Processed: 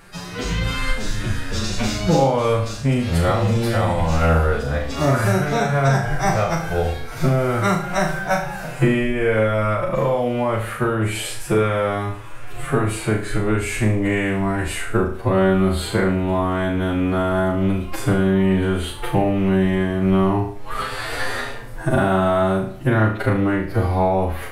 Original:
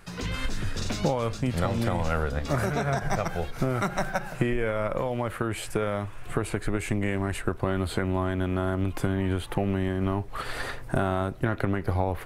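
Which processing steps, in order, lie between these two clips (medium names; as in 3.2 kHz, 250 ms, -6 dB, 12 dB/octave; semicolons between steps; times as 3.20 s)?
time stretch by phase-locked vocoder 2×; flutter echo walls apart 6.3 m, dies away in 0.46 s; trim +7 dB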